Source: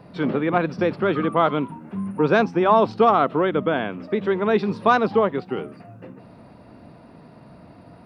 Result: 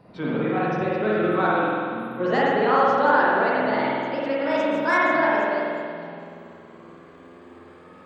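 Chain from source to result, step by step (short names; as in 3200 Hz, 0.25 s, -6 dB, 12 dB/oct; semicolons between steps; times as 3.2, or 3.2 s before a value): gliding pitch shift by +10.5 st starting unshifted; spring tank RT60 2.2 s, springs 47 ms, chirp 65 ms, DRR -6.5 dB; gain -7 dB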